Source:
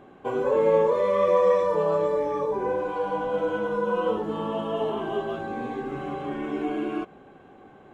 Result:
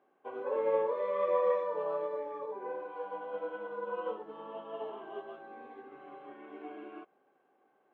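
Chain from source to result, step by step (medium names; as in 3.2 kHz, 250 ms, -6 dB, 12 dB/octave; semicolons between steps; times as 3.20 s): band-pass 400–2900 Hz; distance through air 53 m; upward expansion 1.5:1, over -42 dBFS; trim -6.5 dB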